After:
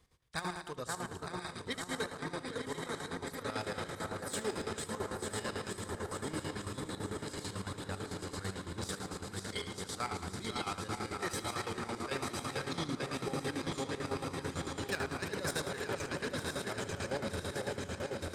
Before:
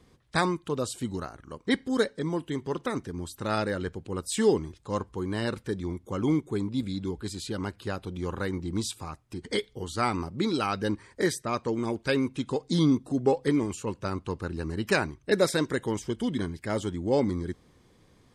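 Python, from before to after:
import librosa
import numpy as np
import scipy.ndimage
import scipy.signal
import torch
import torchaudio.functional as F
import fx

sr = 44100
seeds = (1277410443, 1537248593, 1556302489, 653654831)

y = fx.reverse_delay_fb(x, sr, ms=457, feedback_pct=81, wet_db=-5)
y = fx.peak_eq(y, sr, hz=260.0, db=-9.5, octaves=2.0)
y = fx.echo_alternate(y, sr, ms=519, hz=1900.0, feedback_pct=78, wet_db=-4.0)
y = 10.0 ** (-20.0 / 20.0) * np.tanh(y / 10.0 ** (-20.0 / 20.0))
y = fx.high_shelf(y, sr, hz=10000.0, db=6.5)
y = fx.echo_multitap(y, sr, ms=(73, 177, 274, 872), db=(-7.5, -13.5, -16.0, -19.5))
y = fx.chopper(y, sr, hz=9.0, depth_pct=65, duty_pct=55)
y = F.gain(torch.from_numpy(y), -7.0).numpy()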